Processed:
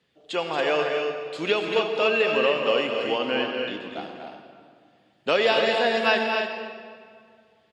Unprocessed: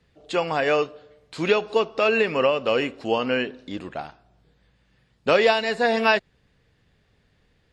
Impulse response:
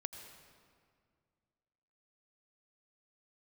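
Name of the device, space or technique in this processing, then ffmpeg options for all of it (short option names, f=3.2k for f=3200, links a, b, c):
stadium PA: -filter_complex "[0:a]asettb=1/sr,asplit=3[a][b][c];[a]atrim=end=3.074[d];[b]atrim=start=3.07:end=3.9,asetpts=PTS-STARTPTS,afade=t=in:d=0.004:c=qsin,afade=t=out:st=0.826:d=0.004:c=qsin,lowpass=f=6.6k:w=0.5412,lowpass=f=6.6k:w=1.3066[e];[c]atrim=start=3.896[f];[d][e]acrossfade=d=0.004:c1=hsin:c2=qsin[g];[g][f]acrossfade=d=0.004:c1=qsin:c2=hsin,highpass=190,equalizer=f=3.2k:t=o:w=0.46:g=6.5,aecho=1:1:230.3|279.9:0.398|0.447[h];[1:a]atrim=start_sample=2205[i];[h][i]afir=irnorm=-1:irlink=0,volume=-1dB"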